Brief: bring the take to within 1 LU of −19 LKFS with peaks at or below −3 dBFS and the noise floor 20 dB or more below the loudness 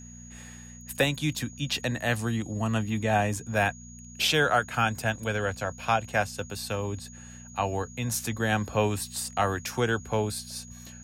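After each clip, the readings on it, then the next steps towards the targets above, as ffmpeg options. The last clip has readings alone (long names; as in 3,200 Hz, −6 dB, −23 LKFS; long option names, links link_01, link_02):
mains hum 60 Hz; hum harmonics up to 240 Hz; level of the hum −46 dBFS; interfering tone 6,700 Hz; level of the tone −48 dBFS; integrated loudness −28.0 LKFS; sample peak −11.5 dBFS; target loudness −19.0 LKFS
→ -af "bandreject=frequency=60:width_type=h:width=4,bandreject=frequency=120:width_type=h:width=4,bandreject=frequency=180:width_type=h:width=4,bandreject=frequency=240:width_type=h:width=4"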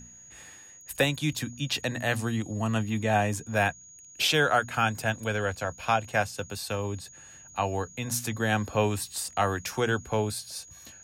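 mains hum none found; interfering tone 6,700 Hz; level of the tone −48 dBFS
→ -af "bandreject=frequency=6700:width=30"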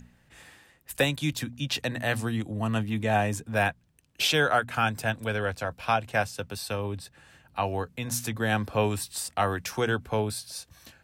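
interfering tone none found; integrated loudness −28.5 LKFS; sample peak −11.5 dBFS; target loudness −19.0 LKFS
→ -af "volume=9.5dB,alimiter=limit=-3dB:level=0:latency=1"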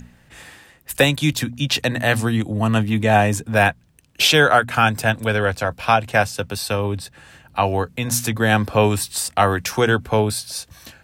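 integrated loudness −19.0 LKFS; sample peak −3.0 dBFS; background noise floor −54 dBFS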